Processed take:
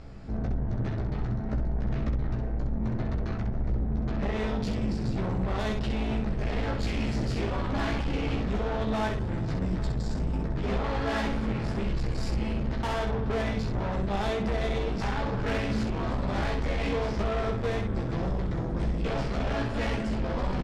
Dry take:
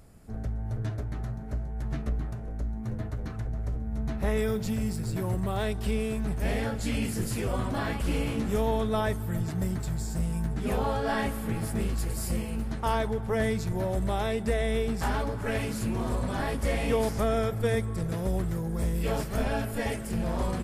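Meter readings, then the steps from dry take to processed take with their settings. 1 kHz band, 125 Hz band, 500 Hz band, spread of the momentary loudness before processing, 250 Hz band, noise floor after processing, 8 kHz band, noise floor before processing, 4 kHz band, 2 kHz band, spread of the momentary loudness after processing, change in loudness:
0.0 dB, +0.5 dB, -1.5 dB, 7 LU, +0.5 dB, -31 dBFS, -9.5 dB, -35 dBFS, +1.0 dB, +0.5 dB, 2 LU, 0.0 dB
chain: octave divider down 2 oct, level -2 dB; low-pass 5.1 kHz 24 dB/octave; compression 10:1, threshold -26 dBFS, peak gain reduction 7 dB; saturation -35.5 dBFS, distortion -8 dB; early reflections 15 ms -4 dB, 65 ms -5 dB; trim +7.5 dB

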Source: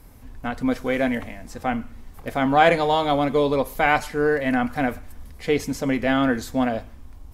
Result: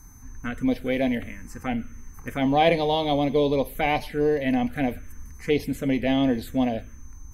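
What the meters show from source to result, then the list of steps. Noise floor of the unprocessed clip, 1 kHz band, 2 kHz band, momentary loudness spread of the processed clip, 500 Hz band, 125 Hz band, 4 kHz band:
-43 dBFS, -5.0 dB, -7.0 dB, 14 LU, -2.0 dB, 0.0 dB, -0.5 dB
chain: whistle 6.2 kHz -51 dBFS; touch-sensitive phaser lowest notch 520 Hz, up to 1.4 kHz, full sweep at -18 dBFS

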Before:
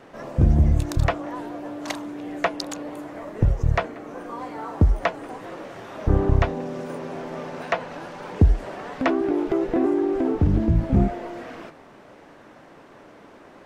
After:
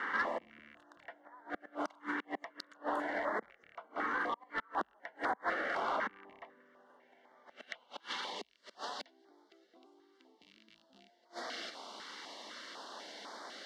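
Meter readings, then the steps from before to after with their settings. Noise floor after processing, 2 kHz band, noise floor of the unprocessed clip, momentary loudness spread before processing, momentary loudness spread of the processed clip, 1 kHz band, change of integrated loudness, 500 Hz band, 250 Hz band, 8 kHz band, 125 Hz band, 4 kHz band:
-69 dBFS, -4.5 dB, -48 dBFS, 16 LU, 19 LU, -7.5 dB, -15.5 dB, -16.5 dB, -23.0 dB, no reading, under -40 dB, -5.5 dB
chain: rattle on loud lows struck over -22 dBFS, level -18 dBFS; inverted gate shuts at -24 dBFS, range -35 dB; peaking EQ 900 Hz +7.5 dB 1.5 oct; compression 12:1, threshold -34 dBFS, peak gain reduction 13 dB; band-pass sweep 1.7 kHz -> 4.4 kHz, 6.50–8.57 s; resonant low shelf 160 Hz -9.5 dB, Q 3; saturation -38.5 dBFS, distortion -20 dB; Butterworth band-stop 2.5 kHz, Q 6.2; step-sequenced notch 4 Hz 650–2700 Hz; trim +17.5 dB

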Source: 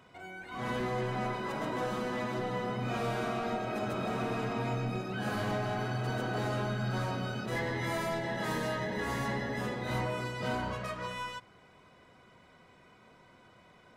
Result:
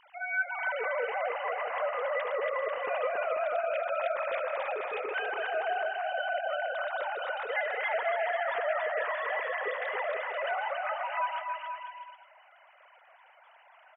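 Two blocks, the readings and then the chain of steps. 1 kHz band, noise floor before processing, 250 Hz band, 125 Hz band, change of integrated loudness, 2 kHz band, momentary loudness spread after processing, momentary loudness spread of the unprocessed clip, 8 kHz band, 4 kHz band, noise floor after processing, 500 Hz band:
+4.0 dB, -60 dBFS, under -25 dB, under -40 dB, +2.5 dB, +6.5 dB, 3 LU, 4 LU, under -30 dB, -1.5 dB, -59 dBFS, +5.0 dB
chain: formants replaced by sine waves; bouncing-ball echo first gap 280 ms, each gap 0.75×, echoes 5

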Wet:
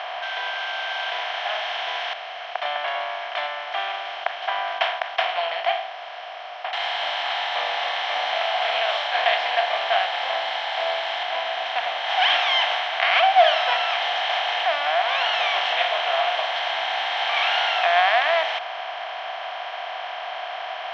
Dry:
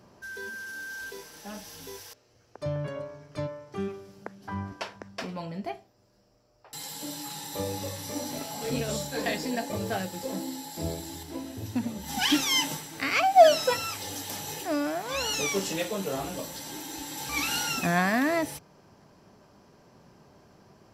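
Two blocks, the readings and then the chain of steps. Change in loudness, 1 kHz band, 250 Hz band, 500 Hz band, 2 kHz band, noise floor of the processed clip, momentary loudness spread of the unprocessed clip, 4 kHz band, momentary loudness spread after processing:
+6.5 dB, +9.0 dB, under -25 dB, +4.0 dB, +11.0 dB, -34 dBFS, 16 LU, +10.5 dB, 13 LU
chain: spectral levelling over time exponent 0.4; elliptic band-pass 770–3500 Hz, stop band 70 dB; trim +2.5 dB

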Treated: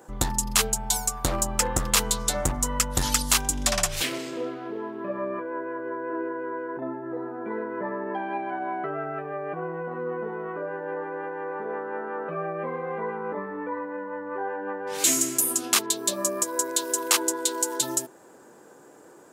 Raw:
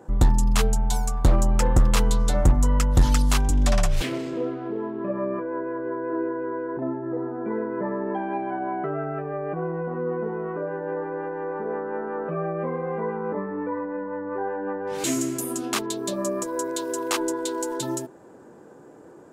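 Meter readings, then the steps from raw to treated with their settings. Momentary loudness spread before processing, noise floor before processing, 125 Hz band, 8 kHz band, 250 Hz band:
9 LU, -48 dBFS, -10.5 dB, +8.5 dB, -5.5 dB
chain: tilt EQ +3 dB/octave

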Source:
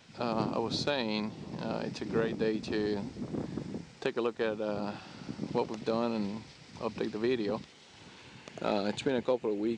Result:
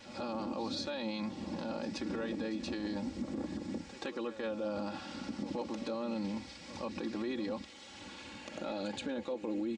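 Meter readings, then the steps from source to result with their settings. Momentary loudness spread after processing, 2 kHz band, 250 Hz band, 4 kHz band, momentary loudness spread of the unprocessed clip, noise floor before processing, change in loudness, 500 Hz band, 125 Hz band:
6 LU, -5.0 dB, -2.5 dB, -4.0 dB, 13 LU, -55 dBFS, -5.0 dB, -7.0 dB, -7.5 dB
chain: comb 3.6 ms, depth 81%; in parallel at -1 dB: compression, threshold -39 dBFS, peak gain reduction 16.5 dB; on the sum: peak limiter -25 dBFS, peak gain reduction 11.5 dB; pre-echo 126 ms -13.5 dB; trim -4 dB

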